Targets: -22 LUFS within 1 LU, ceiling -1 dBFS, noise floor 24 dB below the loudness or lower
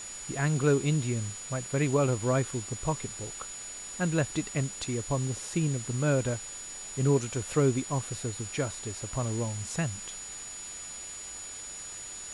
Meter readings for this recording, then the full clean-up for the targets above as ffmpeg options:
steady tone 6.9 kHz; tone level -40 dBFS; noise floor -42 dBFS; noise floor target -55 dBFS; loudness -31.0 LUFS; peak level -13.0 dBFS; loudness target -22.0 LUFS
-> -af "bandreject=f=6900:w=30"
-af "afftdn=nr=13:nf=-42"
-af "volume=2.82"

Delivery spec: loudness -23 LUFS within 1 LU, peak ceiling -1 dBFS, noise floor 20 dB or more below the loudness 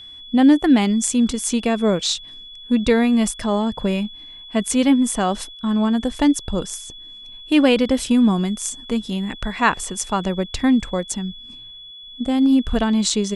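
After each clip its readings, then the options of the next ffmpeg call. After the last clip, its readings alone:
steady tone 3.4 kHz; tone level -37 dBFS; loudness -19.5 LUFS; peak level -3.0 dBFS; loudness target -23.0 LUFS
-> -af "bandreject=f=3400:w=30"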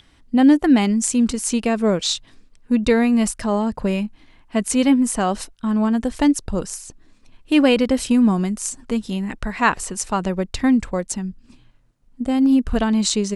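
steady tone not found; loudness -19.5 LUFS; peak level -3.0 dBFS; loudness target -23.0 LUFS
-> -af "volume=0.668"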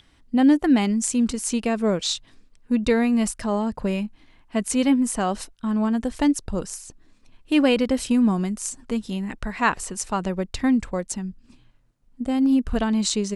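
loudness -23.0 LUFS; peak level -6.5 dBFS; noise floor -58 dBFS

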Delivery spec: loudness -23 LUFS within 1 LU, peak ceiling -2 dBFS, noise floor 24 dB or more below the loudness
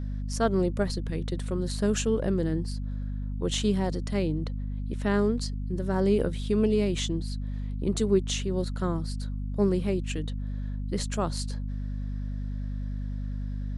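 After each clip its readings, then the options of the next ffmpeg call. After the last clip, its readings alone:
hum 50 Hz; highest harmonic 250 Hz; hum level -30 dBFS; loudness -29.5 LUFS; peak level -11.0 dBFS; loudness target -23.0 LUFS
-> -af "bandreject=f=50:t=h:w=6,bandreject=f=100:t=h:w=6,bandreject=f=150:t=h:w=6,bandreject=f=200:t=h:w=6,bandreject=f=250:t=h:w=6"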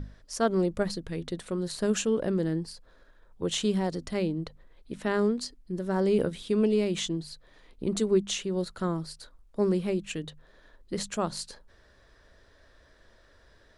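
hum not found; loudness -29.5 LUFS; peak level -13.0 dBFS; loudness target -23.0 LUFS
-> -af "volume=2.11"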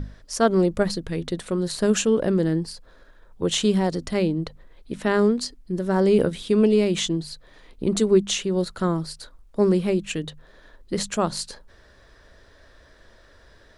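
loudness -23.0 LUFS; peak level -6.5 dBFS; noise floor -54 dBFS

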